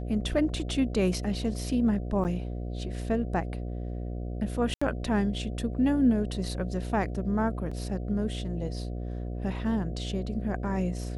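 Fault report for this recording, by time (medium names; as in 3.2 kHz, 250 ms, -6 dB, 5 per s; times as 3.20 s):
buzz 60 Hz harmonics 12 -34 dBFS
2.24–2.25 s: dropout 8.4 ms
4.74–4.82 s: dropout 75 ms
7.71 s: dropout 4.8 ms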